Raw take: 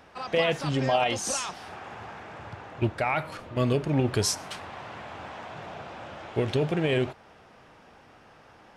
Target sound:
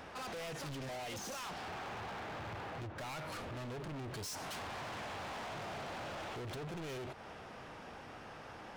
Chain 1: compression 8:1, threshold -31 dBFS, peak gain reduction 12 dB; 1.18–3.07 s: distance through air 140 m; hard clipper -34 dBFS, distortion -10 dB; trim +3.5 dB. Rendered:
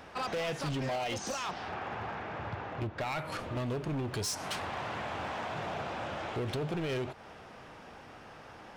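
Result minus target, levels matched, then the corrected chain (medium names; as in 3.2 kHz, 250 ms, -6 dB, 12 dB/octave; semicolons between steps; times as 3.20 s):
hard clipper: distortion -7 dB
compression 8:1, threshold -31 dBFS, peak gain reduction 12 dB; 1.18–3.07 s: distance through air 140 m; hard clipper -45.5 dBFS, distortion -3 dB; trim +3.5 dB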